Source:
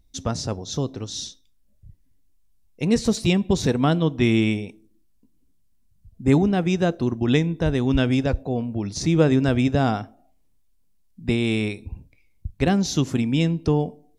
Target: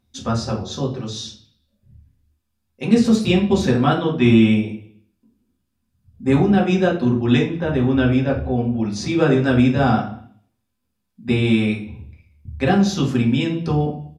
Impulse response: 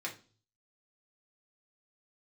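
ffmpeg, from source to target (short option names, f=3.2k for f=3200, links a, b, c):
-filter_complex "[0:a]asettb=1/sr,asplit=3[a][b][c];[a]atrim=end=7.474[d];[b]atrim=start=7.47:end=8.53,asetpts=PTS-STARTPTS,afade=t=in:d=0.004:c=qsin,afade=t=out:st=1.056:d=0.004:c=qsin,highshelf=f=3.4k:g=-10.5[e];[c]atrim=start=8.526[f];[d][e]acrossfade=d=0.004:c1=hsin:c2=qsin[g];[g][f]acrossfade=d=0.004:c1=qsin:c2=hsin,asplit=2[h][i];[i]adelay=190,highpass=300,lowpass=3.4k,asoftclip=type=hard:threshold=-12.5dB,volume=-24dB[j];[h][j]amix=inputs=2:normalize=0[k];[1:a]atrim=start_sample=2205,afade=t=out:st=0.4:d=0.01,atrim=end_sample=18081,asetrate=30429,aresample=44100[l];[k][l]afir=irnorm=-1:irlink=0"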